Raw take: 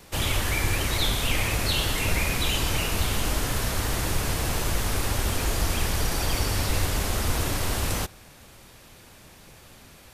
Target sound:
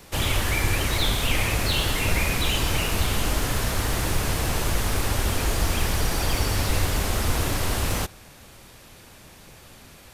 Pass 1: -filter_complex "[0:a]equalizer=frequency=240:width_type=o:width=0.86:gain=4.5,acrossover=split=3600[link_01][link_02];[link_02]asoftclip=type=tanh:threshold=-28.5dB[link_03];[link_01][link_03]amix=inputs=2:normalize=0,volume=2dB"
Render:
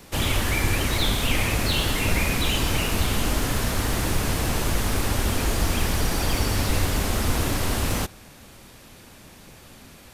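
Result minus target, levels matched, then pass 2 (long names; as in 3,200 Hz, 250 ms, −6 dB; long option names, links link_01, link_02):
250 Hz band +3.0 dB
-filter_complex "[0:a]acrossover=split=3600[link_01][link_02];[link_02]asoftclip=type=tanh:threshold=-28.5dB[link_03];[link_01][link_03]amix=inputs=2:normalize=0,volume=2dB"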